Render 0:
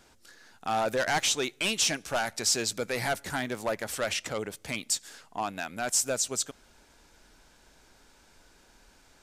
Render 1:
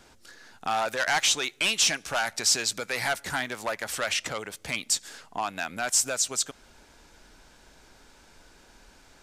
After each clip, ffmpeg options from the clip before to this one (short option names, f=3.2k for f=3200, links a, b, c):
-filter_complex "[0:a]highshelf=f=9.1k:g=-4.5,acrossover=split=760|3200[a][b][c];[a]acompressor=threshold=-42dB:ratio=6[d];[d][b][c]amix=inputs=3:normalize=0,volume=4.5dB"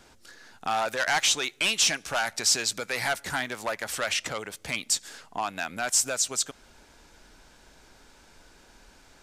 -af anull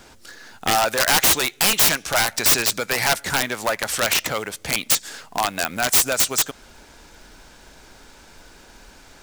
-af "acrusher=bits=4:mode=log:mix=0:aa=0.000001,aeval=exprs='(mod(7.5*val(0)+1,2)-1)/7.5':c=same,volume=8dB"